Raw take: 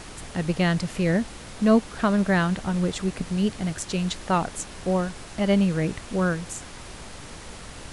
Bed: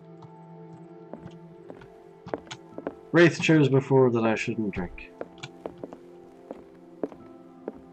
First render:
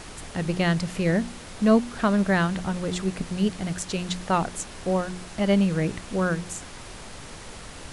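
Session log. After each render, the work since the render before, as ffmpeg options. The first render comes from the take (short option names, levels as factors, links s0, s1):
-af "bandreject=f=60:t=h:w=4,bandreject=f=120:t=h:w=4,bandreject=f=180:t=h:w=4,bandreject=f=240:t=h:w=4,bandreject=f=300:t=h:w=4,bandreject=f=360:t=h:w=4"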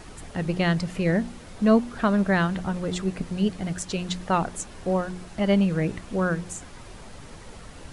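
-af "afftdn=nr=7:nf=-41"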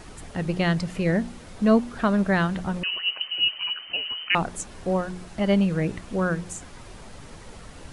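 -filter_complex "[0:a]asettb=1/sr,asplit=3[s0][s1][s2];[s0]atrim=end=2.834[s3];[s1]atrim=start=2.83:end=4.35,asetpts=PTS-STARTPTS,afade=t=in:d=0.004:c=qsin,afade=t=out:st=1.516:d=0.004:c=qsin,lowpass=f=2600:t=q:w=0.5098,lowpass=f=2600:t=q:w=0.6013,lowpass=f=2600:t=q:w=0.9,lowpass=f=2600:t=q:w=2.563,afreqshift=-3100[s4];[s2]atrim=start=4.346[s5];[s3][s4]acrossfade=d=0.004:c1=hsin:c2=qsin[s6];[s6][s5]acrossfade=d=0.004:c1=qsin:c2=hsin"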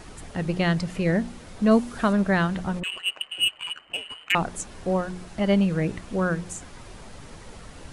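-filter_complex "[0:a]asettb=1/sr,asplit=3[s0][s1][s2];[s0]atrim=end=1.714[s3];[s1]atrim=start=1.71:end=2.13,asetpts=PTS-STARTPTS,afade=t=in:d=0.004:c=qsin,afade=t=out:st=0.416:d=0.004:c=qsin,highshelf=f=7000:g=10.5[s4];[s2]atrim=start=2.126[s5];[s3][s4]acrossfade=d=0.004:c1=hsin:c2=qsin[s6];[s6][s5]acrossfade=d=0.004:c1=qsin:c2=hsin,asplit=3[s7][s8][s9];[s7]afade=t=out:st=2.79:d=0.02[s10];[s8]adynamicsmooth=sensitivity=2:basefreq=1000,afade=t=in:st=2.79:d=0.02,afade=t=out:st=4.31:d=0.02[s11];[s9]afade=t=in:st=4.31:d=0.02[s12];[s10][s11][s12]amix=inputs=3:normalize=0"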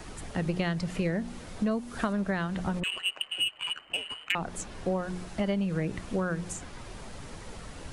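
-filter_complex "[0:a]acrossover=split=130|720|5500[s0][s1][s2][s3];[s3]alimiter=level_in=1.78:limit=0.0631:level=0:latency=1:release=470,volume=0.562[s4];[s0][s1][s2][s4]amix=inputs=4:normalize=0,acompressor=threshold=0.0562:ratio=10"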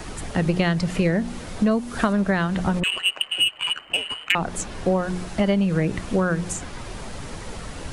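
-af "volume=2.66"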